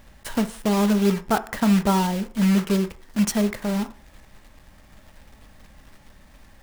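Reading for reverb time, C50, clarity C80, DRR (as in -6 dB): 0.50 s, 16.0 dB, 21.0 dB, 10.0 dB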